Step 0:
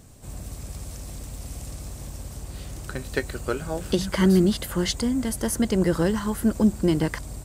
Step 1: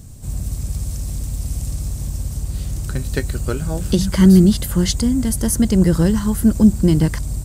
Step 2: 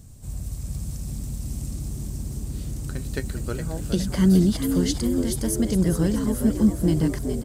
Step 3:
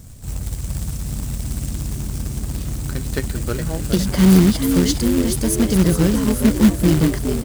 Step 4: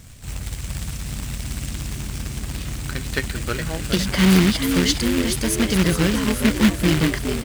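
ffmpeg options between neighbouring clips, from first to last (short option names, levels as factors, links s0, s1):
-af "bass=f=250:g=13,treble=f=4000:g=8"
-filter_complex "[0:a]asplit=7[s0][s1][s2][s3][s4][s5][s6];[s1]adelay=414,afreqshift=81,volume=0.398[s7];[s2]adelay=828,afreqshift=162,volume=0.195[s8];[s3]adelay=1242,afreqshift=243,volume=0.0955[s9];[s4]adelay=1656,afreqshift=324,volume=0.0468[s10];[s5]adelay=2070,afreqshift=405,volume=0.0229[s11];[s6]adelay=2484,afreqshift=486,volume=0.0112[s12];[s0][s7][s8][s9][s10][s11][s12]amix=inputs=7:normalize=0,volume=0.422"
-af "acrusher=bits=3:mode=log:mix=0:aa=0.000001,volume=1.88"
-af "equalizer=f=2400:t=o:w=2.3:g=11.5,volume=0.631"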